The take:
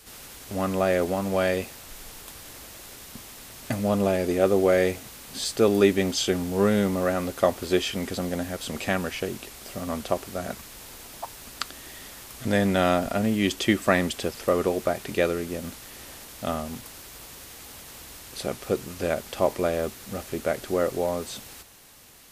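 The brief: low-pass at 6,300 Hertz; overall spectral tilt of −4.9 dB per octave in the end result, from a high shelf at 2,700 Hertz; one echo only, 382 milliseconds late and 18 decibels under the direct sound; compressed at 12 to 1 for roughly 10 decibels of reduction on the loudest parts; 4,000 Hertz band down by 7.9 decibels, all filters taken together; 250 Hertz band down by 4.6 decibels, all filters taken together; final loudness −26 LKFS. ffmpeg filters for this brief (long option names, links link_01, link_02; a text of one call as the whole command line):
ffmpeg -i in.wav -af "lowpass=6300,equalizer=frequency=250:width_type=o:gain=-6.5,highshelf=frequency=2700:gain=-4.5,equalizer=frequency=4000:width_type=o:gain=-6,acompressor=threshold=-26dB:ratio=12,aecho=1:1:382:0.126,volume=8dB" out.wav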